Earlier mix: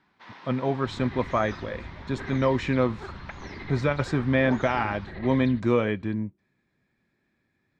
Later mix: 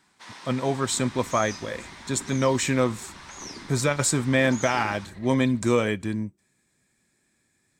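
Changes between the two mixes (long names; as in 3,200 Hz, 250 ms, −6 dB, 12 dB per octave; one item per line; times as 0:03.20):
second sound −11.5 dB
master: remove high-frequency loss of the air 290 metres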